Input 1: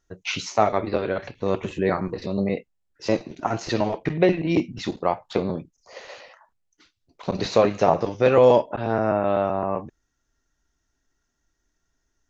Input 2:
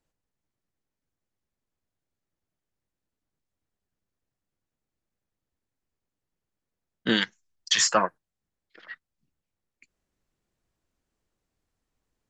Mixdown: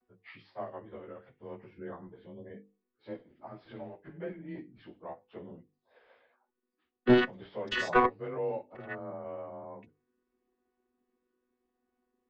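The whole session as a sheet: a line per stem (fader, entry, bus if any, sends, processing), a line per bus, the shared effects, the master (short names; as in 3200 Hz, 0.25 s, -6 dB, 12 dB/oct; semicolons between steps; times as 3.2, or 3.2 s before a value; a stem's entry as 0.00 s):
-18.0 dB, 0.00 s, no send, inharmonic rescaling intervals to 92%; notches 50/100/150/200/250/300/350/400/450/500 Hz
+2.5 dB, 0.00 s, no send, chord vocoder bare fifth, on B3; de-esser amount 60%; one-sided clip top -25 dBFS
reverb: off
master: LPF 2400 Hz 12 dB/oct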